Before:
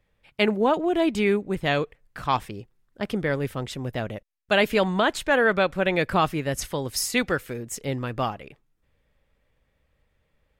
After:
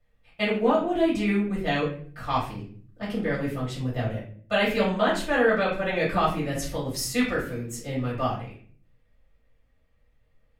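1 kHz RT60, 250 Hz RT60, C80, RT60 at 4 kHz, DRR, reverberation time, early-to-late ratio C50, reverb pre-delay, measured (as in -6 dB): 0.45 s, 0.75 s, 10.0 dB, 0.35 s, -8.0 dB, 0.50 s, 5.5 dB, 3 ms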